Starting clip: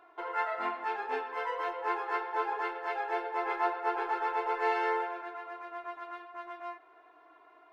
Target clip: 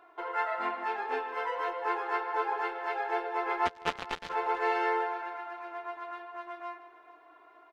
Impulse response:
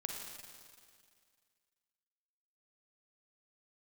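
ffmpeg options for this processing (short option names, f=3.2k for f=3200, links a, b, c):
-filter_complex "[0:a]asplit=2[a][b];[b]adelay=152,lowpass=f=4.5k:p=1,volume=-12.5dB,asplit=2[c][d];[d]adelay=152,lowpass=f=4.5k:p=1,volume=0.31,asplit=2[e][f];[f]adelay=152,lowpass=f=4.5k:p=1,volume=0.31[g];[c][e][g]amix=inputs=3:normalize=0[h];[a][h]amix=inputs=2:normalize=0,asplit=3[i][j][k];[i]afade=t=out:st=3.65:d=0.02[l];[j]acrusher=bits=3:mix=0:aa=0.5,afade=t=in:st=3.65:d=0.02,afade=t=out:st=4.29:d=0.02[m];[k]afade=t=in:st=4.29:d=0.02[n];[l][m][n]amix=inputs=3:normalize=0,asplit=2[o][p];[p]aecho=0:1:439|878|1317:0.126|0.0453|0.0163[q];[o][q]amix=inputs=2:normalize=0,volume=1dB"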